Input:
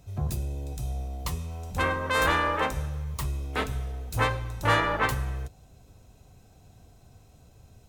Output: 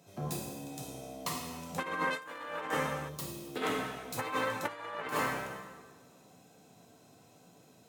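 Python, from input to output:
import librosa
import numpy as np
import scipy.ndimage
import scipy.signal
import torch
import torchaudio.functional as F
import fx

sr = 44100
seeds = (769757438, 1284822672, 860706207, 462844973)

y = scipy.signal.sosfilt(scipy.signal.butter(4, 170.0, 'highpass', fs=sr, output='sos'), x)
y = fx.rev_plate(y, sr, seeds[0], rt60_s=1.4, hf_ratio=0.85, predelay_ms=0, drr_db=-1.5)
y = fx.over_compress(y, sr, threshold_db=-27.0, ratio=-0.5)
y = fx.graphic_eq(y, sr, hz=(1000, 2000, 8000), db=(-10, -9, -4), at=(3.08, 3.61), fade=0.02)
y = y * librosa.db_to_amplitude(-6.5)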